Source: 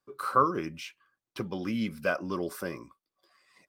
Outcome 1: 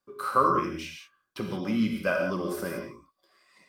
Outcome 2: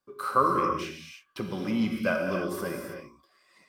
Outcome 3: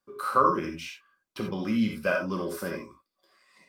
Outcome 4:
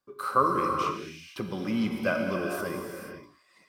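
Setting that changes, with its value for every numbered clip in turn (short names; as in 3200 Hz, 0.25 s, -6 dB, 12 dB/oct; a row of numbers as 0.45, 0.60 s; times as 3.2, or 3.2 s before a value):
non-linear reverb, gate: 0.2, 0.35, 0.11, 0.52 s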